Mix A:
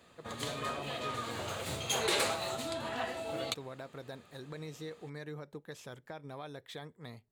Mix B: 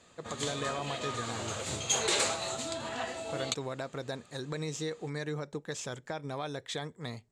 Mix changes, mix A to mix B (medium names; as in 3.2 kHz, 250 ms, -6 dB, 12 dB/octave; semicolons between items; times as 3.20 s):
speech +7.5 dB; master: add resonant low-pass 7.3 kHz, resonance Q 2.8